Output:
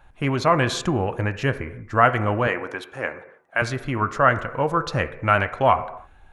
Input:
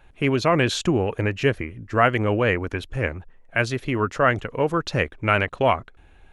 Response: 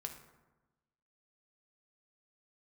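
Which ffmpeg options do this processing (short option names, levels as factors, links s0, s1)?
-filter_complex "[0:a]asettb=1/sr,asplit=3[s0][s1][s2];[s0]atrim=end=2.474[s3];[s1]atrim=start=2.47:end=3.62,asetpts=PTS-STARTPTS,afade=t=in:d=0.004:c=qsin,afade=t=out:st=1.146:d=0.004:c=qsin,highpass=300[s4];[s2]atrim=start=3.616[s5];[s3][s4]acrossfade=d=0.004:c1=hsin:c2=qsin[s6];[s6][s5]acrossfade=d=0.004:c1=qsin:c2=hsin,asplit=2[s7][s8];[s8]acrossover=split=440 2300:gain=0.224 1 0.126[s9][s10][s11];[s9][s10][s11]amix=inputs=3:normalize=0[s12];[1:a]atrim=start_sample=2205,afade=t=out:st=0.37:d=0.01,atrim=end_sample=16758[s13];[s12][s13]afir=irnorm=-1:irlink=0,volume=1.19[s14];[s7][s14]amix=inputs=2:normalize=0,volume=0.891"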